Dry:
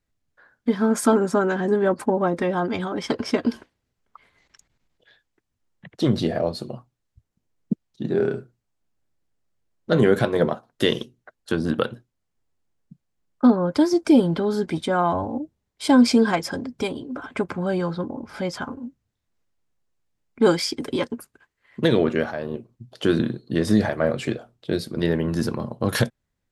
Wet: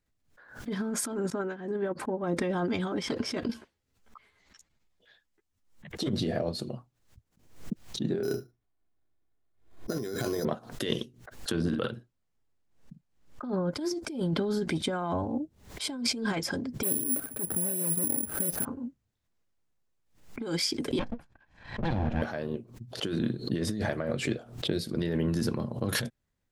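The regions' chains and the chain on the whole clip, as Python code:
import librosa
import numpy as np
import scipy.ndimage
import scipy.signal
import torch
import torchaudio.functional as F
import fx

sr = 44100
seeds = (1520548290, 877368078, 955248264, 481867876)

y = fx.chain(x, sr, fx.bass_treble(bass_db=-3, treble_db=-8),
    fx.upward_expand(threshold_db=-30.0, expansion=2.5), at=(1.3, 2.24))
y = fx.chain(y, sr, fx.high_shelf(hz=3900.0, db=4.0),
    fx.ensemble(), at=(3.48, 6.1))
y = fx.chain(y, sr, fx.resample_bad(factor=8, down='filtered', up='hold'),
    fx.comb(ms=2.8, depth=0.39), at=(8.23, 10.45))
y = fx.chain(y, sr, fx.high_shelf(hz=8600.0, db=-7.0),
    fx.doubler(ms=48.0, db=-8.5), at=(11.53, 13.45))
y = fx.chain(y, sr, fx.median_filter(points=41),
    fx.resample_bad(factor=4, down='none', up='zero_stuff'), at=(16.83, 18.65))
y = fx.chain(y, sr, fx.lower_of_two(delay_ms=1.2),
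    fx.spacing_loss(db_at_10k=25), at=(20.99, 22.22))
y = fx.over_compress(y, sr, threshold_db=-23.0, ratio=-1.0)
y = fx.dynamic_eq(y, sr, hz=920.0, q=0.77, threshold_db=-37.0, ratio=4.0, max_db=-5)
y = fx.pre_swell(y, sr, db_per_s=110.0)
y = y * 10.0 ** (-5.5 / 20.0)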